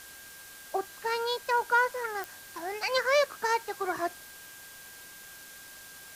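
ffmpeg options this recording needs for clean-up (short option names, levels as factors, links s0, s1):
-af "adeclick=t=4,bandreject=f=1600:w=30,afwtdn=0.004"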